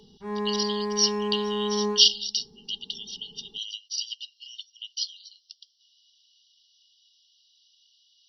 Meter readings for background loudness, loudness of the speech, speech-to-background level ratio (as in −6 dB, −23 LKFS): −29.5 LKFS, −26.5 LKFS, 3.0 dB